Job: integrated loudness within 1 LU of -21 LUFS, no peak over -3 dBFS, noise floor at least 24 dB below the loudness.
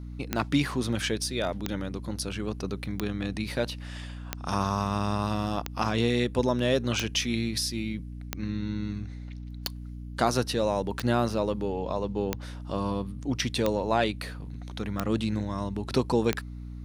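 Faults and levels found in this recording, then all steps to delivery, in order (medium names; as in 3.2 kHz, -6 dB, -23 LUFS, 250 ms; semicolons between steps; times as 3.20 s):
clicks found 13; hum 60 Hz; highest harmonic 300 Hz; hum level -36 dBFS; loudness -29.5 LUFS; peak level -8.5 dBFS; loudness target -21.0 LUFS
-> de-click; hum notches 60/120/180/240/300 Hz; trim +8.5 dB; peak limiter -3 dBFS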